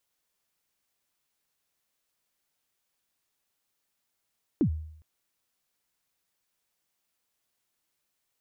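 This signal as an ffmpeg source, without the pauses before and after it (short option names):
-f lavfi -i "aevalsrc='0.126*pow(10,-3*t/0.69)*sin(2*PI*(360*0.086/log(78/360)*(exp(log(78/360)*min(t,0.086)/0.086)-1)+78*max(t-0.086,0)))':d=0.41:s=44100"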